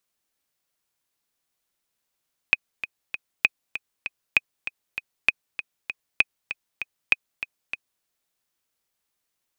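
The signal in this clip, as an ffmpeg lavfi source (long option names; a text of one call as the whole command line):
ffmpeg -f lavfi -i "aevalsrc='pow(10,(-3-12.5*gte(mod(t,3*60/196),60/196))/20)*sin(2*PI*2510*mod(t,60/196))*exp(-6.91*mod(t,60/196)/0.03)':duration=5.51:sample_rate=44100" out.wav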